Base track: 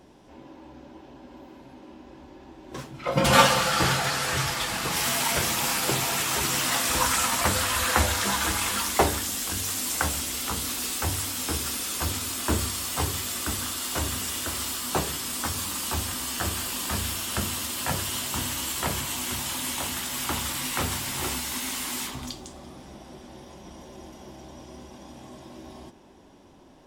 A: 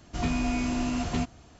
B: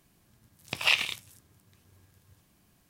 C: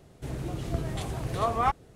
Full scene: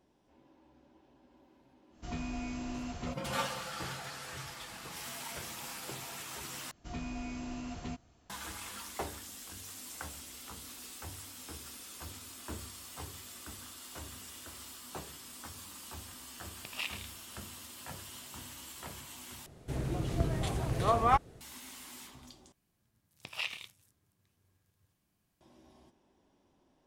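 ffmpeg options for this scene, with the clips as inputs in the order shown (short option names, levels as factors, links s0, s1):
-filter_complex "[1:a]asplit=2[s0][s1];[2:a]asplit=2[s2][s3];[0:a]volume=0.133,asplit=4[s4][s5][s6][s7];[s4]atrim=end=6.714[s8];[s1]atrim=end=1.59,asetpts=PTS-STARTPTS,volume=0.237[s9];[s5]atrim=start=8.296:end=19.464[s10];[3:a]atrim=end=1.95,asetpts=PTS-STARTPTS,volume=0.944[s11];[s6]atrim=start=21.406:end=22.524[s12];[s3]atrim=end=2.89,asetpts=PTS-STARTPTS,volume=0.224[s13];[s7]atrim=start=25.406[s14];[s0]atrim=end=1.59,asetpts=PTS-STARTPTS,volume=0.282,afade=t=in:d=0.1,afade=t=out:st=1.49:d=0.1,adelay=1890[s15];[s2]atrim=end=2.89,asetpts=PTS-STARTPTS,volume=0.188,afade=t=in:d=0.004:c=hsin,afade=t=out:st=2.886:d=0.004:c=hsin,adelay=15920[s16];[s8][s9]acrossfade=d=0.004:c1=hsin:c2=hsin[s17];[s17][s10]acrossfade=d=0.004:c1=hsin:c2=hsin[s18];[s18][s11]acrossfade=d=0.004:c1=hsin:c2=hsin[s19];[s19][s12]acrossfade=d=0.004:c1=hsin:c2=hsin[s20];[s20][s13]acrossfade=d=0.004:c1=hsin:c2=hsin[s21];[s21][s14]acrossfade=d=0.004:c1=hsin:c2=hsin[s22];[s22][s15][s16]amix=inputs=3:normalize=0"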